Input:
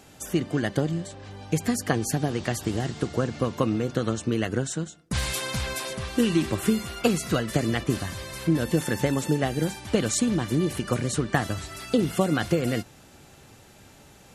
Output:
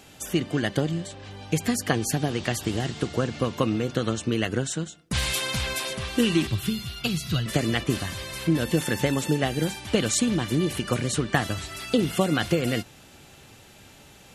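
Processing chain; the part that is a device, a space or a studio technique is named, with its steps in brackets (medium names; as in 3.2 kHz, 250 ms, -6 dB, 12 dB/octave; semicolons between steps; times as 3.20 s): 6.47–7.46 s: ten-band graphic EQ 125 Hz +8 dB, 250 Hz -6 dB, 500 Hz -12 dB, 1 kHz -6 dB, 2 kHz -7 dB, 4 kHz +4 dB, 8 kHz -8 dB; presence and air boost (peaking EQ 3 kHz +5.5 dB 1.1 oct; treble shelf 11 kHz +3.5 dB)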